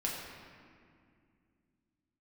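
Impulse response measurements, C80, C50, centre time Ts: 2.5 dB, 1.0 dB, 92 ms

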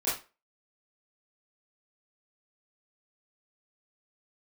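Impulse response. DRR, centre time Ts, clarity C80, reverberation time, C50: −11.5 dB, 40 ms, 12.0 dB, 0.30 s, 5.0 dB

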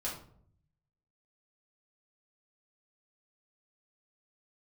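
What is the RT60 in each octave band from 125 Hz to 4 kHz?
1.2, 0.85, 0.65, 0.55, 0.40, 0.35 seconds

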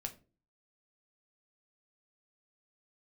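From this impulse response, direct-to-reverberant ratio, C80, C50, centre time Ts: 4.0 dB, 20.5 dB, 15.5 dB, 8 ms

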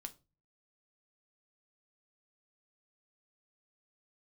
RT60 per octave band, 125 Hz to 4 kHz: 0.60, 0.45, 0.35, 0.25, 0.20, 0.25 seconds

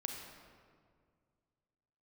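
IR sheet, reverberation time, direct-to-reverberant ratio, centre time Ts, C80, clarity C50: 2.0 s, 2.0 dB, 63 ms, 4.5 dB, 3.0 dB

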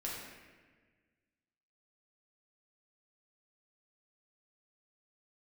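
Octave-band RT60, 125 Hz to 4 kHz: 2.0, 1.9, 1.6, 1.3, 1.6, 1.1 seconds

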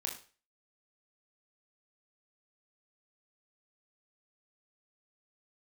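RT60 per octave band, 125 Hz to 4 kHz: 0.40, 0.35, 0.40, 0.35, 0.40, 0.40 seconds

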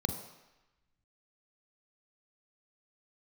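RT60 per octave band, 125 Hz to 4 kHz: 0.85, 0.85, 0.95, 1.1, 1.2, 1.0 seconds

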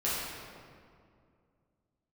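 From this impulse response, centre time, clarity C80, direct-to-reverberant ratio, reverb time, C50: 129 ms, 0.0 dB, −9.5 dB, 2.3 s, −2.5 dB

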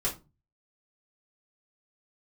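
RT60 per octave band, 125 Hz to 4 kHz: 0.55, 0.40, 0.30, 0.25, 0.20, 0.20 seconds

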